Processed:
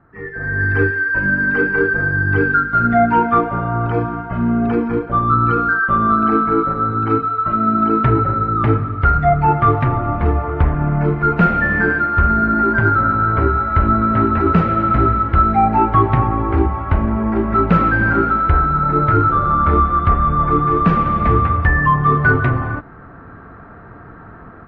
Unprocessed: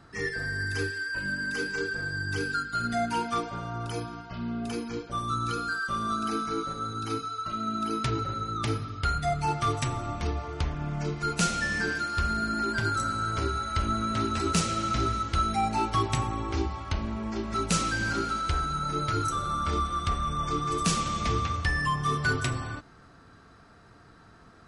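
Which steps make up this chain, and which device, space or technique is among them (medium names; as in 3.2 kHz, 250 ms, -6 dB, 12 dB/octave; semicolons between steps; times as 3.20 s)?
action camera in a waterproof case (low-pass 1.8 kHz 24 dB/octave; level rider gain up to 16.5 dB; AAC 64 kbps 48 kHz)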